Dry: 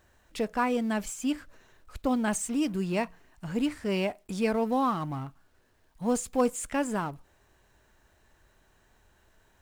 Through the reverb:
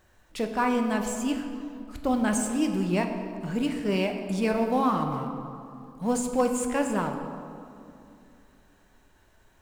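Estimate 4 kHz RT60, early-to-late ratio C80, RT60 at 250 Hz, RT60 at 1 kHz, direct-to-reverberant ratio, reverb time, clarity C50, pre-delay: 1.3 s, 7.5 dB, 3.2 s, 2.5 s, 4.0 dB, 2.6 s, 6.5 dB, 5 ms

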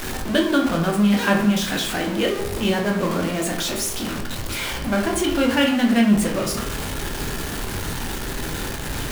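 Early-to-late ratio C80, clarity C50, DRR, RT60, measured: 10.0 dB, 6.5 dB, 1.0 dB, 0.75 s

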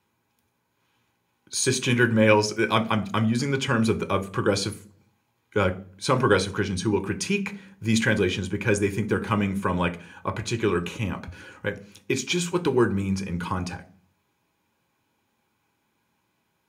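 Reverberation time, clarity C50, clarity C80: 0.40 s, 18.5 dB, 22.5 dB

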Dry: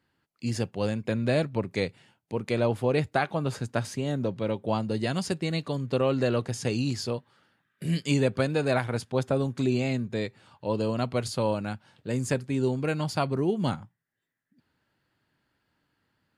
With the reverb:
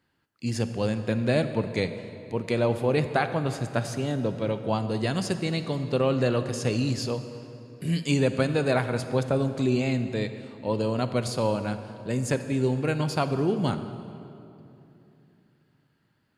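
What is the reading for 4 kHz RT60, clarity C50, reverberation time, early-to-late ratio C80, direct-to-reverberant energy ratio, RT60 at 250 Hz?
1.9 s, 10.0 dB, 2.9 s, 11.0 dB, 10.0 dB, 3.6 s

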